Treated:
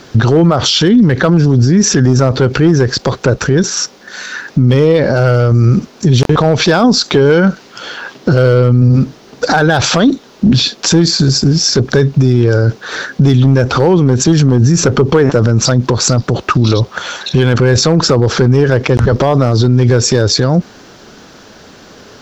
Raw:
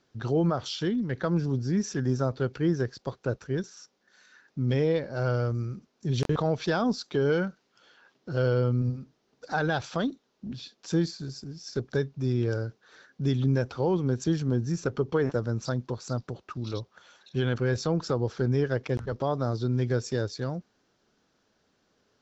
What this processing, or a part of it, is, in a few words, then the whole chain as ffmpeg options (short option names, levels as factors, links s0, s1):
loud club master: -af "acompressor=threshold=0.0224:ratio=1.5,asoftclip=type=hard:threshold=0.075,alimiter=level_in=50.1:limit=0.891:release=50:level=0:latency=1,volume=0.891"